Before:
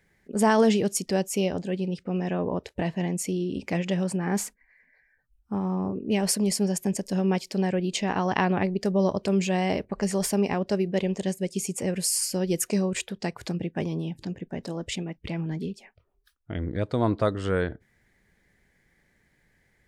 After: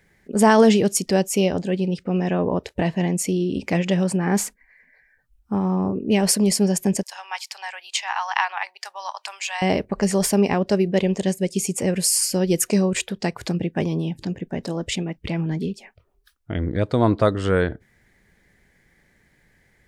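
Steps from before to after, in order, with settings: 7.03–9.62 s: elliptic high-pass 850 Hz, stop band 70 dB; trim +6 dB

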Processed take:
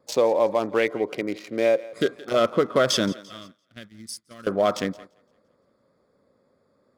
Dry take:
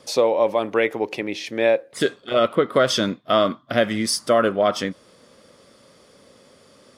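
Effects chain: local Wiener filter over 15 samples; 3.12–4.47 s: amplifier tone stack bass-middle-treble 6-0-2; on a send: thinning echo 171 ms, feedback 50%, high-pass 360 Hz, level -20 dB; on the sum: gate -42 dBFS, range -12 dB; 0.88–2.16 s: comb of notches 860 Hz; in parallel at -2.5 dB: peak limiter -14 dBFS, peak gain reduction 7.5 dB; on the sum: treble shelf 6.9 kHz +7.5 dB; trim -5 dB

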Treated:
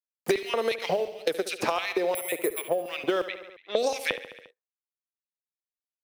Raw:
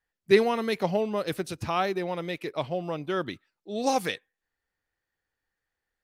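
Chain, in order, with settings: companding laws mixed up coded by A; 2.15–2.70 s: careless resampling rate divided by 4×, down filtered, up zero stuff; LFO high-pass square 2.8 Hz 490–2400 Hz; 1.05–1.47 s: gate -35 dBFS, range -25 dB; bass shelf 350 Hz +5 dB; 3.26–4.00 s: level-controlled noise filter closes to 1.1 kHz, open at -22.5 dBFS; compression 6:1, threshold -32 dBFS, peak gain reduction 20.5 dB; feedback delay 70 ms, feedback 54%, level -14 dB; three bands compressed up and down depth 100%; trim +8 dB

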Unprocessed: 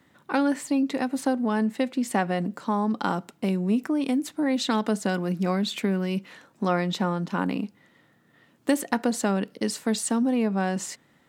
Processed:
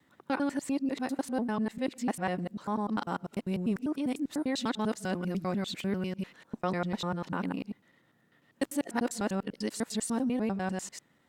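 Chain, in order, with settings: time reversed locally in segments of 99 ms; trim -6.5 dB; Opus 96 kbps 48 kHz

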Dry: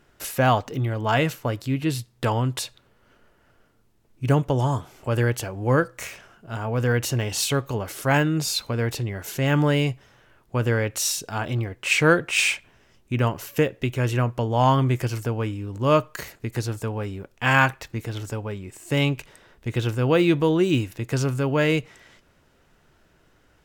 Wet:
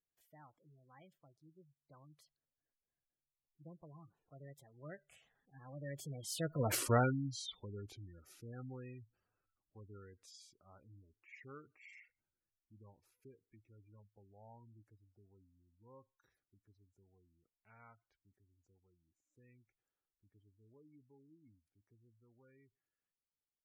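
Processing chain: Doppler pass-by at 6.75 s, 51 m/s, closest 2.6 m; spectral gate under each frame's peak -15 dB strong; trim +2.5 dB

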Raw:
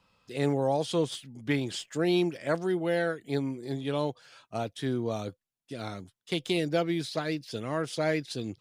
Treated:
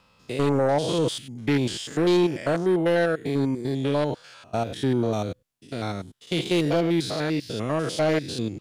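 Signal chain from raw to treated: spectrogram pixelated in time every 100 ms; sine folder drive 5 dB, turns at -15.5 dBFS

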